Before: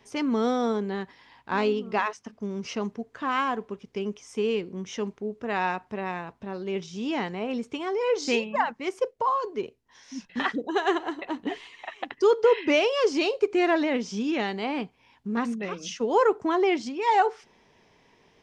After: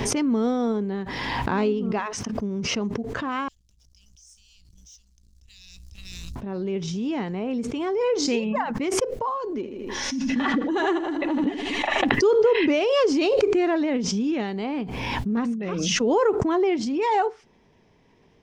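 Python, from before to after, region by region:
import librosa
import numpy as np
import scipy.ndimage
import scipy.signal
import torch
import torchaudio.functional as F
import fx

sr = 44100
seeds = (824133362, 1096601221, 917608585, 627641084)

y = fx.chain(x, sr, fx.cheby2_bandstop(low_hz=230.0, high_hz=1400.0, order=4, stop_db=70),
    fx.high_shelf(hz=4600.0, db=-7.0),
    fx.leveller(passes=2), at=(3.48, 6.36))
y = fx.chain(y, sr, fx.comb(ms=3.5, depth=0.46),
    fx.echo_feedback(ms=80, feedback_pct=41, wet_db=-11.5), at=(9.48, 12.04))
y = fx.low_shelf(y, sr, hz=440.0, db=11.0)
y = fx.pre_swell(y, sr, db_per_s=21.0)
y = y * librosa.db_to_amplitude(-5.0)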